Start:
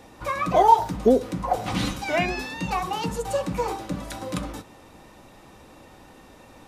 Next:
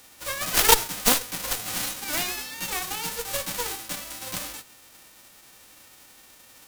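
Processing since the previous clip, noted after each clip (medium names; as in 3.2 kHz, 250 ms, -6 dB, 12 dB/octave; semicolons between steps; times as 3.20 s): formants flattened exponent 0.1; Chebyshev shaper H 6 -14 dB, 7 -11 dB, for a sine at -0.5 dBFS; trim -2.5 dB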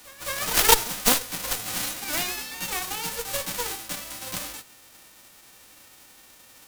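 pre-echo 210 ms -17 dB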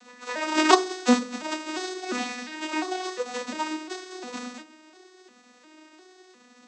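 vocoder on a broken chord major triad, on B3, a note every 352 ms; on a send at -7 dB: reverberation RT60 0.35 s, pre-delay 3 ms; on the sum: trim +2 dB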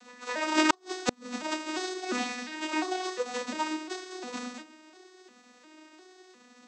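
inverted gate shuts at -8 dBFS, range -38 dB; trim -1.5 dB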